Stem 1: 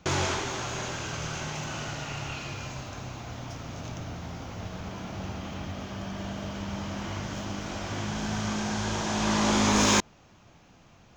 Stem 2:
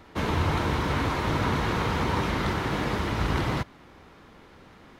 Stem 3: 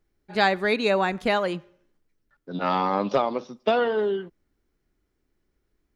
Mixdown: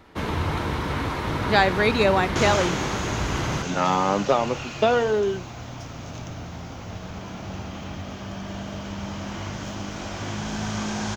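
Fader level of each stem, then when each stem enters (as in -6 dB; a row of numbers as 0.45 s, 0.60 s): +2.0 dB, -0.5 dB, +2.0 dB; 2.30 s, 0.00 s, 1.15 s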